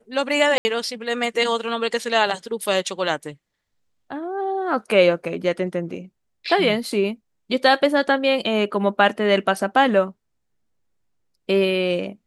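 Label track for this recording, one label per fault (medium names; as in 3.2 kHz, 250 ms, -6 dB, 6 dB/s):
0.580000	0.650000	dropout 70 ms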